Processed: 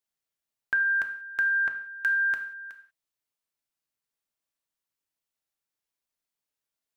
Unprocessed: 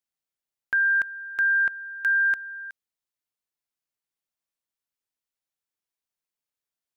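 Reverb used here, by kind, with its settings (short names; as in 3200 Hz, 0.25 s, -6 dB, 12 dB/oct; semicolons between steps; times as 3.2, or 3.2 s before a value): non-linear reverb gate 0.21 s falling, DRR 5.5 dB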